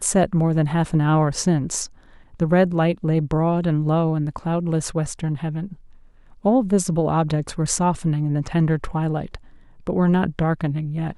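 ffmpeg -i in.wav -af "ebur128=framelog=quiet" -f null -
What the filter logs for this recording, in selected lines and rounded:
Integrated loudness:
  I:         -21.4 LUFS
  Threshold: -31.9 LUFS
Loudness range:
  LRA:         2.6 LU
  Threshold: -42.0 LUFS
  LRA low:   -23.3 LUFS
  LRA high:  -20.8 LUFS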